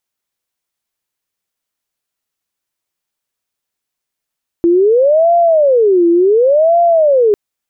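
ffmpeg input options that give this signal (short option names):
-f lavfi -i "aevalsrc='0.473*sin(2*PI*(514*t-175/(2*PI*0.69)*sin(2*PI*0.69*t)))':d=2.7:s=44100"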